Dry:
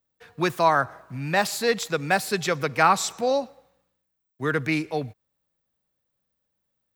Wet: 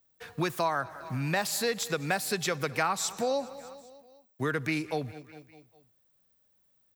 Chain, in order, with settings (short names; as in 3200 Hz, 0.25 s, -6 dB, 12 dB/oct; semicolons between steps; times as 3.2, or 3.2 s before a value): high shelf 5800 Hz +6 dB; on a send: feedback echo 0.202 s, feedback 56%, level -24 dB; on the sum: compressor 3:1, threshold -33 dBFS, peak gain reduction 15 dB; gain +3.5 dB